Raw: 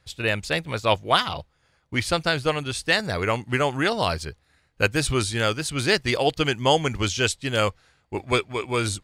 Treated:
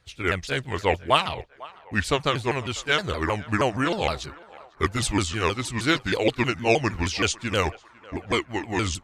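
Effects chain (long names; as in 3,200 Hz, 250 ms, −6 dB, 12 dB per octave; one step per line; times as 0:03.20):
pitch shifter swept by a sawtooth −5.5 semitones, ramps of 157 ms
feedback echo with a band-pass in the loop 499 ms, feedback 65%, band-pass 1,000 Hz, level −19 dB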